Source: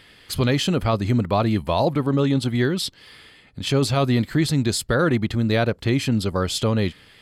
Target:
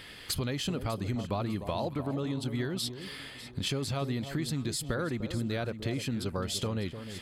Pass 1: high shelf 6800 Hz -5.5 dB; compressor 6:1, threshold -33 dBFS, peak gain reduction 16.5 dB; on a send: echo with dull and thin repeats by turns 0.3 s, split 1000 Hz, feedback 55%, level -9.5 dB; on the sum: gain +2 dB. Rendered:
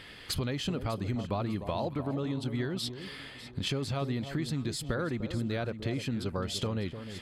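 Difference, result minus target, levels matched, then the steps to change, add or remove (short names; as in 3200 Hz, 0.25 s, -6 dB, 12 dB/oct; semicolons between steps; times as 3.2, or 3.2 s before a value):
8000 Hz band -4.0 dB
change: high shelf 6800 Hz +4 dB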